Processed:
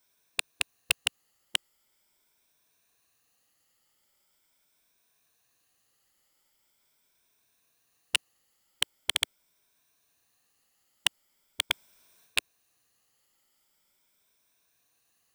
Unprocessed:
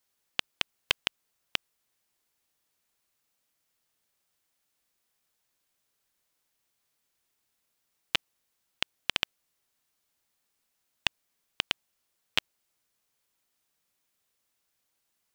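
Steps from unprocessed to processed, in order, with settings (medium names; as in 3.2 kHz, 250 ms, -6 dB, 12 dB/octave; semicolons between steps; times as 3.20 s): drifting ripple filter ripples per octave 1.6, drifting +0.42 Hz, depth 9 dB; 11.70–12.38 s: transient shaper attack -4 dB, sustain +9 dB; wavefolder -12 dBFS; trim +5 dB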